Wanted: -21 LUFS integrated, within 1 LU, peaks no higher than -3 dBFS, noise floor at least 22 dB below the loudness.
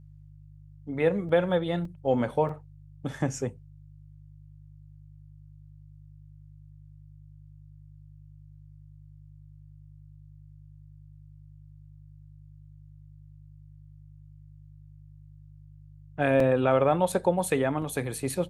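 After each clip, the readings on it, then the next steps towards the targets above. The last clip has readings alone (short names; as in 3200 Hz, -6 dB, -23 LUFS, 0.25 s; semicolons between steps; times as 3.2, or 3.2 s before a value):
dropouts 6; longest dropout 3.1 ms; hum 50 Hz; harmonics up to 150 Hz; hum level -47 dBFS; loudness -27.0 LUFS; peak -10.0 dBFS; loudness target -21.0 LUFS
-> interpolate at 1.29/1.85/2.49/16.4/17.12/17.82, 3.1 ms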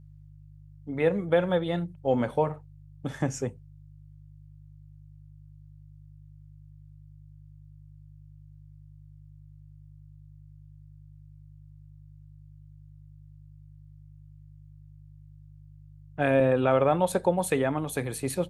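dropouts 0; hum 50 Hz; harmonics up to 150 Hz; hum level -47 dBFS
-> de-hum 50 Hz, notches 3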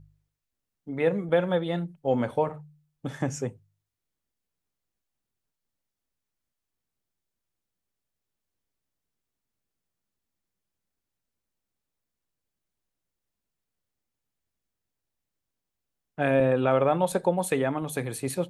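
hum none; loudness -26.5 LUFS; peak -10.0 dBFS; loudness target -21.0 LUFS
-> gain +5.5 dB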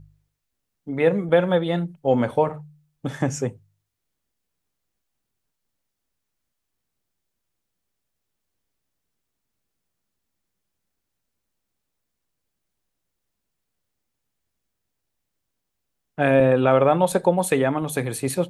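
loudness -21.0 LUFS; peak -4.5 dBFS; noise floor -80 dBFS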